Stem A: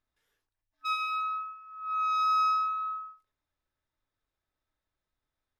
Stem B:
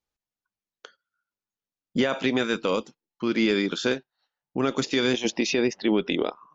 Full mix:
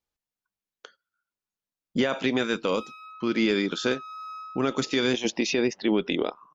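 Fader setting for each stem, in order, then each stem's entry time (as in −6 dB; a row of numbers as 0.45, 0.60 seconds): −13.5, −1.0 decibels; 1.90, 0.00 seconds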